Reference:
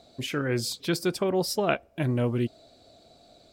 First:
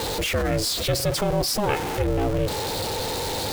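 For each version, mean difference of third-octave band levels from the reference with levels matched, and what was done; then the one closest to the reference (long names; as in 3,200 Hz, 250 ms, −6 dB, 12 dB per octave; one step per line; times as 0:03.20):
17.0 dB: converter with a step at zero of −27.5 dBFS
parametric band 310 Hz +9 dB 0.27 octaves
ring modulation 210 Hz
envelope flattener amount 50%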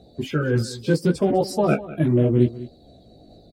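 6.0 dB: spectral magnitudes quantised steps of 30 dB
tilt shelving filter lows +6.5 dB, about 730 Hz
multi-voice chorus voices 2, 0.75 Hz, delay 16 ms, depth 3.5 ms
on a send: single-tap delay 200 ms −16.5 dB
on the sum: level +7 dB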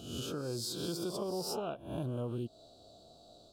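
8.5 dB: peak hold with a rise ahead of every peak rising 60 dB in 0.71 s
parametric band 260 Hz −3 dB 0.25 octaves
downward compressor, threshold −30 dBFS, peak gain reduction 11.5 dB
Butterworth band-reject 2,000 Hz, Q 1
level −4 dB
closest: second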